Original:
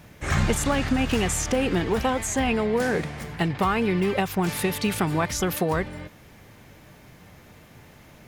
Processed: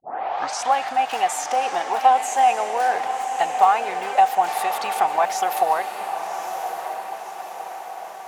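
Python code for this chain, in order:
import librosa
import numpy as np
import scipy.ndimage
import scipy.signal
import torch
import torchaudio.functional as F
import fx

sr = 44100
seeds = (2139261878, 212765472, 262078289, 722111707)

y = fx.tape_start_head(x, sr, length_s=0.75)
y = fx.highpass_res(y, sr, hz=760.0, q=7.8)
y = fx.echo_diffused(y, sr, ms=1117, feedback_pct=55, wet_db=-8)
y = y * 10.0 ** (-2.0 / 20.0)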